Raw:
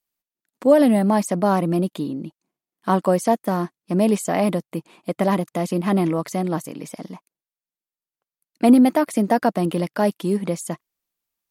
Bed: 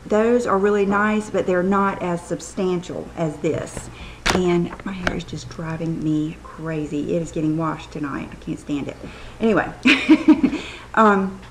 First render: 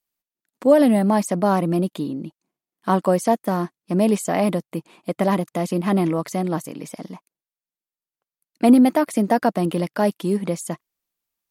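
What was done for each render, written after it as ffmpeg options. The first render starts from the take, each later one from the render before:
ffmpeg -i in.wav -af anull out.wav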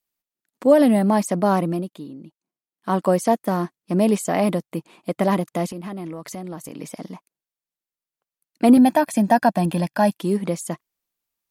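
ffmpeg -i in.wav -filter_complex "[0:a]asettb=1/sr,asplit=3[link_01][link_02][link_03];[link_01]atrim=end=5.714[link_04];[link_02]atrim=start=5.71:end=6.79,asetpts=PTS-STARTPTS,afade=type=in:duration=0.004:curve=qsin,afade=type=out:start_time=1.076:duration=0.004:curve=qsin,acompressor=threshold=-30dB:ratio=5:attack=3.2:release=140:knee=1:detection=peak[link_05];[link_03]atrim=start=6.786[link_06];[link_04][link_05]acrossfade=duration=0.004:curve1=hsin:curve2=qsin[link_07];[link_07][link_06]acrossfade=duration=0.004:curve1=qsin:curve2=hsin,asettb=1/sr,asplit=3[link_08][link_09][link_10];[link_08]atrim=end=8.774[link_11];[link_09]atrim=start=8.77:end=10.16,asetpts=PTS-STARTPTS,afade=type=in:duration=0.004:curve=qsin,afade=type=out:start_time=1.386:duration=0.004:curve=qsin,aecho=1:1:1.2:0.69,atrim=end_sample=61299[link_12];[link_10]atrim=start=10.156[link_13];[link_11][link_12]acrossfade=duration=0.004:curve1=hsin:curve2=qsin[link_14];[link_14][link_13]acrossfade=duration=0.004:curve1=qsin:curve2=hsin,asplit=3[link_15][link_16][link_17];[link_15]atrim=end=1.88,asetpts=PTS-STARTPTS,afade=type=out:start_time=1.6:duration=0.28:silence=0.334965[link_18];[link_16]atrim=start=1.88:end=2.76,asetpts=PTS-STARTPTS,volume=-9.5dB[link_19];[link_17]atrim=start=2.76,asetpts=PTS-STARTPTS,afade=type=in:duration=0.28:silence=0.334965[link_20];[link_18][link_19][link_20]concat=n=3:v=0:a=1" out.wav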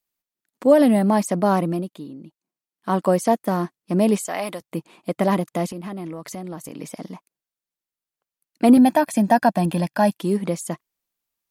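ffmpeg -i in.wav -filter_complex "[0:a]asettb=1/sr,asplit=3[link_01][link_02][link_03];[link_01]atrim=end=4.204[link_04];[link_02]atrim=start=4.2:end=4.61,asetpts=PTS-STARTPTS,afade=type=in:duration=0.004:curve=qsin,afade=type=out:start_time=0.406:duration=0.004:curve=qsin,highpass=frequency=1100:poles=1[link_05];[link_03]atrim=start=4.606[link_06];[link_04][link_05]acrossfade=duration=0.004:curve1=hsin:curve2=qsin[link_07];[link_07][link_06]acrossfade=duration=0.004:curve1=qsin:curve2=hsin" out.wav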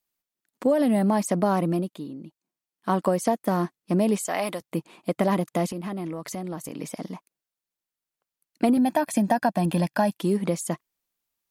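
ffmpeg -i in.wav -af "acompressor=threshold=-18dB:ratio=6" out.wav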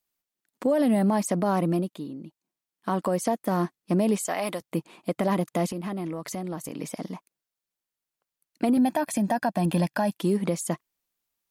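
ffmpeg -i in.wav -af "alimiter=limit=-15dB:level=0:latency=1:release=81" out.wav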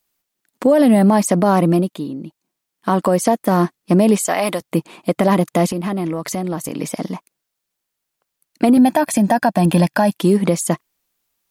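ffmpeg -i in.wav -af "volume=10dB" out.wav

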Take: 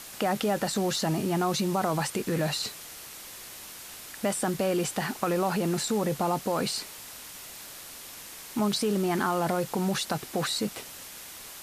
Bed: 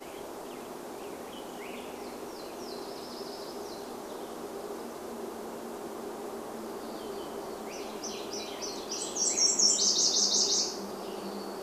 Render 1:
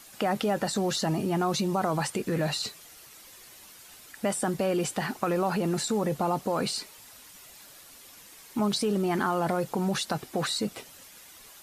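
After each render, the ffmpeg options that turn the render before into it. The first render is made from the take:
ffmpeg -i in.wav -af "afftdn=noise_reduction=9:noise_floor=-44" out.wav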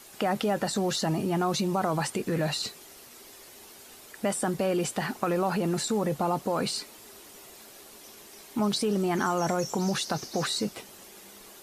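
ffmpeg -i in.wav -i bed.wav -filter_complex "[1:a]volume=-16.5dB[link_01];[0:a][link_01]amix=inputs=2:normalize=0" out.wav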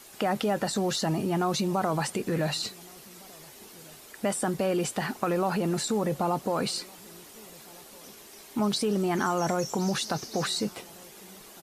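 ffmpeg -i in.wav -filter_complex "[0:a]asplit=2[link_01][link_02];[link_02]adelay=1458,volume=-25dB,highshelf=frequency=4000:gain=-32.8[link_03];[link_01][link_03]amix=inputs=2:normalize=0" out.wav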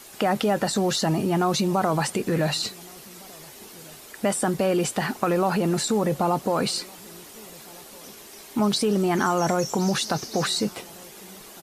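ffmpeg -i in.wav -af "volume=4.5dB" out.wav

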